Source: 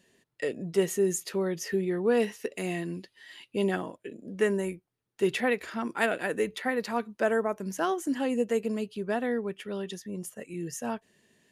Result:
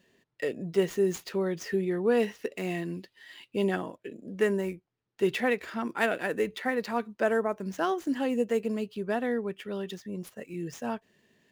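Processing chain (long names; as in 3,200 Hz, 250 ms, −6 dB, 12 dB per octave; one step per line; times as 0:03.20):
running median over 5 samples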